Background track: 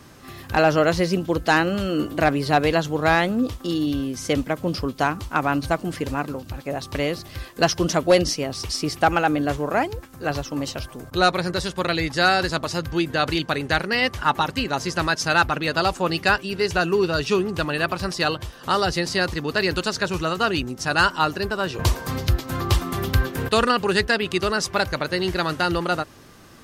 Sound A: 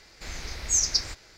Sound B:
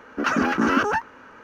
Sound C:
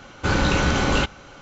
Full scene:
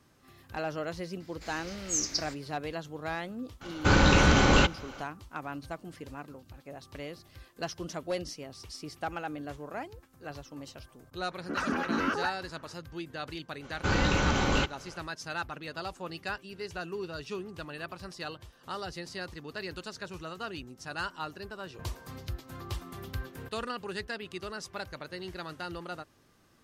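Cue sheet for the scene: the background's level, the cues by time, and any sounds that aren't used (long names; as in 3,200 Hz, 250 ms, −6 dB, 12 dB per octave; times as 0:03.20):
background track −17 dB
0:01.20: mix in A −7 dB + high-pass filter 98 Hz 6 dB per octave
0:03.61: mix in C −1 dB
0:11.31: mix in B −9.5 dB
0:13.60: mix in C −6.5 dB, fades 0.05 s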